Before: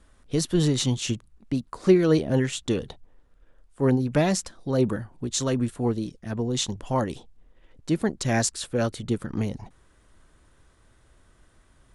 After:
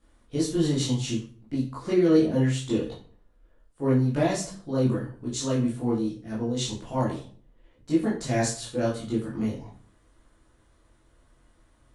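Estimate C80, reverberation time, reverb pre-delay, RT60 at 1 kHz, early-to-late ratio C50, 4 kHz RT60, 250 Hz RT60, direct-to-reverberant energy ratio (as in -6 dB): 11.0 dB, 0.45 s, 13 ms, 0.40 s, 6.0 dB, 0.35 s, 0.60 s, -8.0 dB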